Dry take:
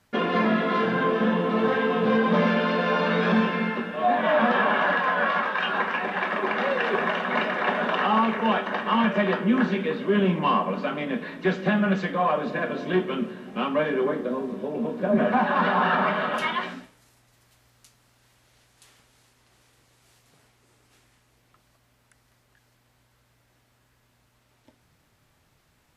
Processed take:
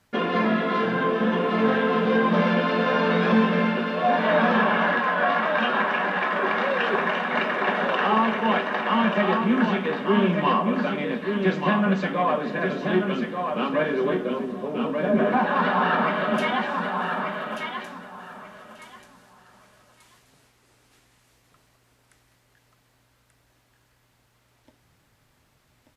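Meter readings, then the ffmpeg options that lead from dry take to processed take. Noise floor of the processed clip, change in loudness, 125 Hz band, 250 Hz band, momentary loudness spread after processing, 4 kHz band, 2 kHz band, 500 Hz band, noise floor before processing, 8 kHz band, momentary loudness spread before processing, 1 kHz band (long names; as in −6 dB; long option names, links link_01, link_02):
−64 dBFS, +1.0 dB, +1.5 dB, +1.5 dB, 7 LU, +1.0 dB, +1.5 dB, +1.0 dB, −65 dBFS, can't be measured, 7 LU, +1.0 dB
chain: -af "aecho=1:1:1185|2370|3555:0.562|0.112|0.0225"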